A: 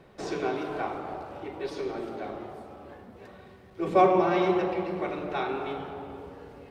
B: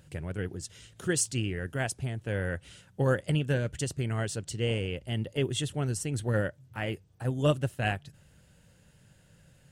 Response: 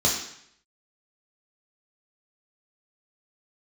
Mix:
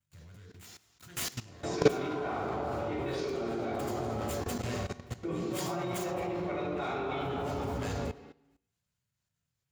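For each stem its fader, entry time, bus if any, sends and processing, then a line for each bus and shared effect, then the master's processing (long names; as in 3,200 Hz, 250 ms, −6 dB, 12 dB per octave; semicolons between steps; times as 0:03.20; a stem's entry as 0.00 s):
+1.0 dB, 1.45 s, send −5.5 dB, compressor whose output falls as the input rises −30 dBFS, ratio −0.5
−1.0 dB, 0.00 s, send −12 dB, downward expander −49 dBFS; first-order pre-emphasis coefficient 0.8; short delay modulated by noise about 1,900 Hz, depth 0.073 ms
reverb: on, RT60 0.70 s, pre-delay 3 ms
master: output level in coarse steps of 17 dB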